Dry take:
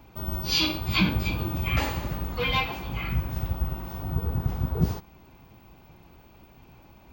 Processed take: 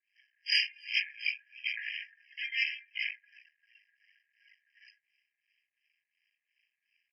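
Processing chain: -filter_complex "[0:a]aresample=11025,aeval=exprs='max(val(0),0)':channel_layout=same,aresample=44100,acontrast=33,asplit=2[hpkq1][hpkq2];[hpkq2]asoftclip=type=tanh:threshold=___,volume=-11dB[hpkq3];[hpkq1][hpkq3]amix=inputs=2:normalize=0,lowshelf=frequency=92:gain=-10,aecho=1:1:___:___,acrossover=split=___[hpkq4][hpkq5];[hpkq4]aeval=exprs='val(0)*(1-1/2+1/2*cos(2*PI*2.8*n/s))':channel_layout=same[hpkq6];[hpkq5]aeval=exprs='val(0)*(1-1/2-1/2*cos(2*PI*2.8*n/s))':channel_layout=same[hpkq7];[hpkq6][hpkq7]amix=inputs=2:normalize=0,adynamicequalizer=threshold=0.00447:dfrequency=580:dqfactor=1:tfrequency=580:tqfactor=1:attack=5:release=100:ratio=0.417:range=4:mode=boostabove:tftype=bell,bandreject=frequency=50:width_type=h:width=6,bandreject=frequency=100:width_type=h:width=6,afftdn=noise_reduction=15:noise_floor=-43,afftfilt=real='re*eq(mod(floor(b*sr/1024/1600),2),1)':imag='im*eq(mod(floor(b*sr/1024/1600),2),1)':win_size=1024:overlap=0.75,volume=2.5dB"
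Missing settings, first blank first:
-22.5dB, 261, 0.075, 1500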